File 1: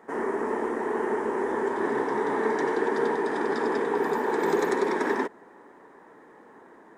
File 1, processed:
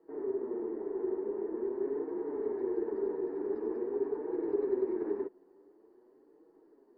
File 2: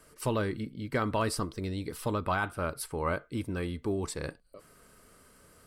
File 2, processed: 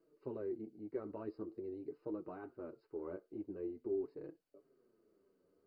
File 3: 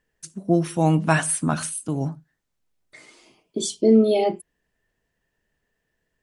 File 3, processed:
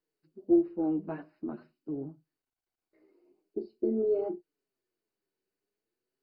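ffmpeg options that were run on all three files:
-af "flanger=delay=6:depth=4.9:regen=2:speed=0.46:shape=triangular,bandpass=f=360:t=q:w=4.3:csg=0" -ar 48000 -c:a mp2 -b:a 32k

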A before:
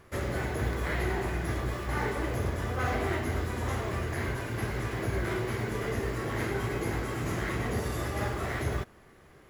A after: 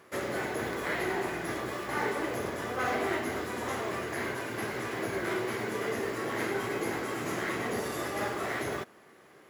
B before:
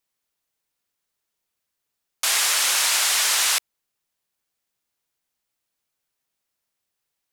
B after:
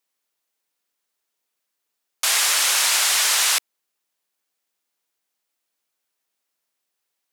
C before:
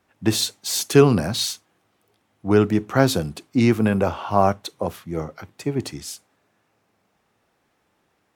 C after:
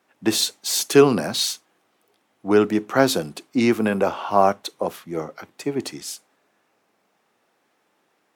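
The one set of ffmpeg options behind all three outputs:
-af "highpass=240,volume=1.5dB"

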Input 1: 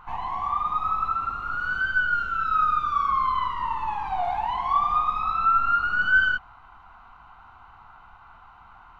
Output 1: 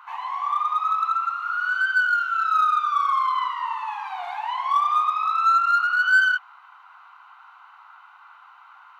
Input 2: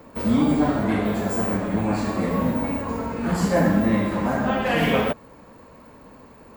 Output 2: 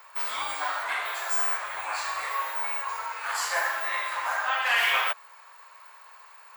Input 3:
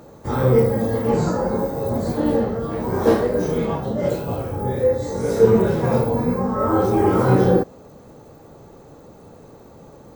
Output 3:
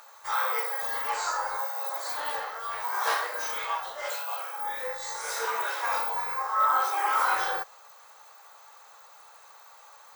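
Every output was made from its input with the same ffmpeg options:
-filter_complex "[0:a]highpass=f=1k:w=0.5412,highpass=f=1k:w=1.3066,asplit=2[a][b];[b]asoftclip=type=hard:threshold=-22dB,volume=-5.5dB[c];[a][c]amix=inputs=2:normalize=0"

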